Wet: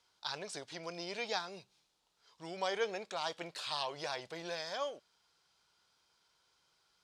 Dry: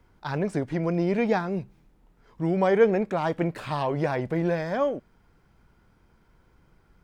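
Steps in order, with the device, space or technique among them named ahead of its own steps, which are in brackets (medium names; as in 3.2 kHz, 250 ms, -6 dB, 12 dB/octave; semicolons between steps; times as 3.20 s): piezo pickup straight into a mixer (low-pass 5.7 kHz 12 dB/octave; differentiator); graphic EQ 250/2000/4000 Hz -7/-9/+6 dB; trim +9 dB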